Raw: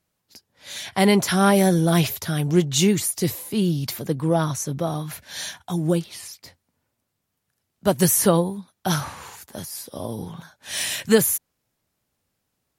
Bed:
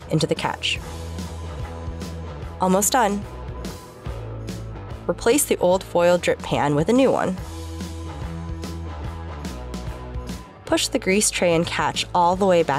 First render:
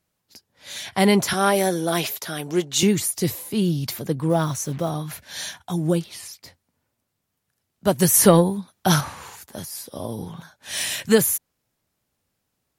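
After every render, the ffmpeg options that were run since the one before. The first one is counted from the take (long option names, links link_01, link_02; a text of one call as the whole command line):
ffmpeg -i in.wav -filter_complex "[0:a]asettb=1/sr,asplit=3[link_01][link_02][link_03];[link_01]atrim=end=1.334[link_04];[link_02]atrim=start=1.33:end=2.83,asetpts=PTS-STARTPTS,afade=type=in:duration=0.004:curve=qsin,afade=type=out:start_time=1.496:duration=0.004:curve=qsin,highpass=310[link_05];[link_03]atrim=start=2.826[link_06];[link_04][link_05]acrossfade=duration=0.004:curve1=hsin:curve2=qsin[link_07];[link_07][link_06]acrossfade=duration=0.004:curve1=qsin:curve2=hsin,asplit=3[link_08][link_09][link_10];[link_08]afade=type=out:start_time=4.29:duration=0.02[link_11];[link_09]acrusher=bits=6:mix=0:aa=0.5,afade=type=in:start_time=4.29:duration=0.02,afade=type=out:start_time=4.89:duration=0.02[link_12];[link_10]afade=type=in:start_time=4.89:duration=0.02[link_13];[link_11][link_12][link_13]amix=inputs=3:normalize=0,asettb=1/sr,asplit=3[link_14][link_15][link_16];[link_14]atrim=end=8.144[link_17];[link_15]atrim=start=8.14:end=9.01,asetpts=PTS-STARTPTS,afade=type=in:duration=0.004:curve=qsin,afade=type=out:start_time=0.866:duration=0.004:curve=qsin,acontrast=20[link_18];[link_16]atrim=start=9.006[link_19];[link_17][link_18]acrossfade=duration=0.004:curve1=hsin:curve2=qsin[link_20];[link_20][link_19]acrossfade=duration=0.004:curve1=qsin:curve2=hsin" out.wav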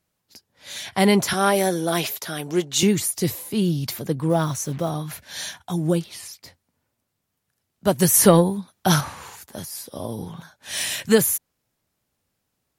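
ffmpeg -i in.wav -af anull out.wav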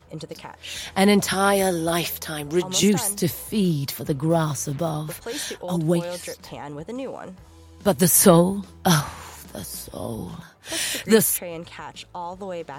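ffmpeg -i in.wav -i bed.wav -filter_complex "[1:a]volume=-15dB[link_01];[0:a][link_01]amix=inputs=2:normalize=0" out.wav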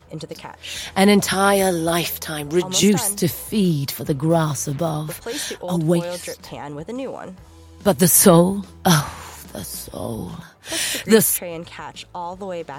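ffmpeg -i in.wav -af "volume=3dB,alimiter=limit=-1dB:level=0:latency=1" out.wav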